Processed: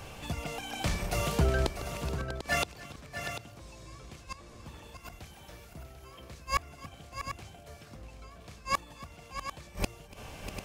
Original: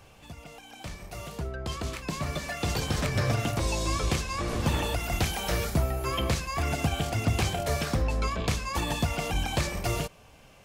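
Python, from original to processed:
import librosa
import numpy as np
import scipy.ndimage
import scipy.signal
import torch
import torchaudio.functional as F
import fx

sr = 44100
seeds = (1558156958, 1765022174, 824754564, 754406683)

y = fx.gate_flip(x, sr, shuts_db=-23.0, range_db=-30)
y = fx.echo_multitap(y, sr, ms=(288, 643, 744), db=(-20.0, -10.5, -10.0))
y = y * librosa.db_to_amplitude(8.5)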